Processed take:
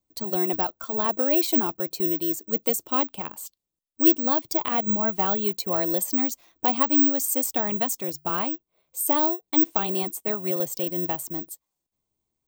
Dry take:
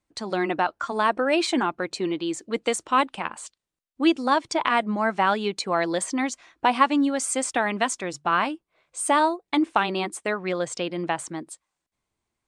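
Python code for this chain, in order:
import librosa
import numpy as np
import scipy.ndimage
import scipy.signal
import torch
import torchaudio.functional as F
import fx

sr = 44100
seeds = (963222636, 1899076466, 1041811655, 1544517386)

y = fx.peak_eq(x, sr, hz=1700.0, db=-13.0, octaves=1.7)
y = (np.kron(scipy.signal.resample_poly(y, 1, 2), np.eye(2)[0]) * 2)[:len(y)]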